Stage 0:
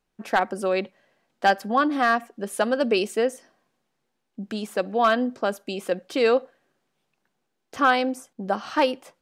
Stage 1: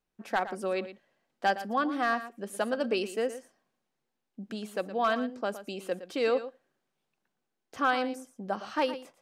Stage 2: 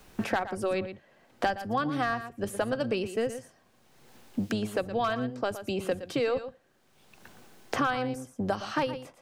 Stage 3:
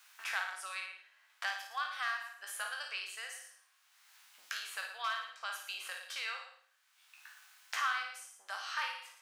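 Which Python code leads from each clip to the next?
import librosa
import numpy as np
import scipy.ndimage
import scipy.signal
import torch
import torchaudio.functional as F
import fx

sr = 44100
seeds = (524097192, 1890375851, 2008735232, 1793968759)

y1 = x + 10.0 ** (-13.0 / 20.0) * np.pad(x, (int(115 * sr / 1000.0), 0))[:len(x)]
y1 = y1 * 10.0 ** (-7.5 / 20.0)
y2 = fx.octave_divider(y1, sr, octaves=1, level_db=-5.0)
y2 = fx.band_squash(y2, sr, depth_pct=100)
y3 = fx.spec_trails(y2, sr, decay_s=0.42)
y3 = scipy.signal.sosfilt(scipy.signal.butter(4, 1200.0, 'highpass', fs=sr, output='sos'), y3)
y3 = fx.room_flutter(y3, sr, wall_m=9.4, rt60_s=0.48)
y3 = y3 * 10.0 ** (-3.5 / 20.0)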